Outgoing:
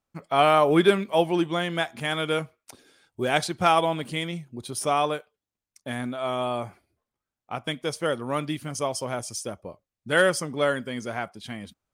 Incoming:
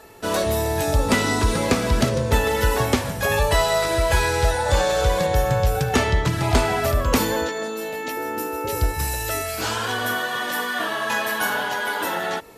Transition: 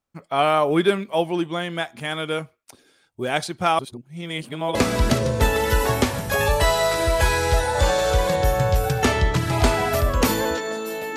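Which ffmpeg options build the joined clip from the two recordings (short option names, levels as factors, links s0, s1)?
-filter_complex "[0:a]apad=whole_dur=11.16,atrim=end=11.16,asplit=2[s0][s1];[s0]atrim=end=3.792[s2];[s1]atrim=start=3.788:end=4.752,asetpts=PTS-STARTPTS,areverse[s3];[1:a]atrim=start=1.658:end=8.07[s4];[s2][s3]acrossfade=d=0.004:c1=hsin:c2=hsin[s5];[s5][s4]acrossfade=d=0.004:c1=hsin:c2=hsin"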